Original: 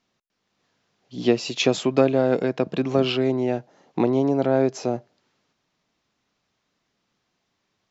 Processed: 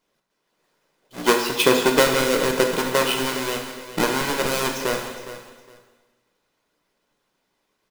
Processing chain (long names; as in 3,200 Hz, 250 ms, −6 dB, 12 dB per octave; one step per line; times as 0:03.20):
each half-wave held at its own peak
comb filter 2 ms, depth 42%
harmonic and percussive parts rebalanced harmonic −12 dB
parametric band 77 Hz −12 dB 1.4 octaves
repeating echo 412 ms, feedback 22%, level −14 dB
dense smooth reverb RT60 1.3 s, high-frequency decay 0.95×, DRR 2 dB